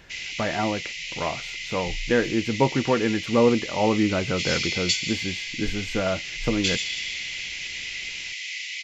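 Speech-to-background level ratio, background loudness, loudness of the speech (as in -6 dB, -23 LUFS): 3.5 dB, -29.5 LUFS, -26.0 LUFS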